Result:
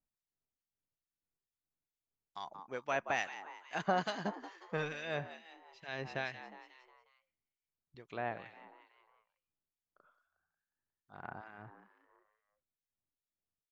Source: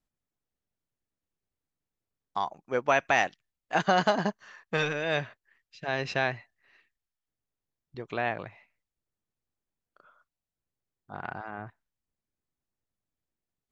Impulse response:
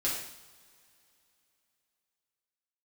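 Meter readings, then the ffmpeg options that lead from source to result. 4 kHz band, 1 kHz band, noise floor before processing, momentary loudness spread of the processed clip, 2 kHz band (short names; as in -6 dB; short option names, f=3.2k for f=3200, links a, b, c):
-10.5 dB, -10.0 dB, under -85 dBFS, 21 LU, -10.5 dB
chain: -filter_complex "[0:a]asplit=6[a][b][c][d][e][f];[b]adelay=180,afreqshift=82,volume=-13dB[g];[c]adelay=360,afreqshift=164,volume=-18.5dB[h];[d]adelay=540,afreqshift=246,volume=-24dB[i];[e]adelay=720,afreqshift=328,volume=-29.5dB[j];[f]adelay=900,afreqshift=410,volume=-35.1dB[k];[a][g][h][i][j][k]amix=inputs=6:normalize=0,acrossover=split=1700[l][m];[l]aeval=exprs='val(0)*(1-0.7/2+0.7/2*cos(2*PI*2.3*n/s))':c=same[n];[m]aeval=exprs='val(0)*(1-0.7/2-0.7/2*cos(2*PI*2.3*n/s))':c=same[o];[n][o]amix=inputs=2:normalize=0,volume=-7dB"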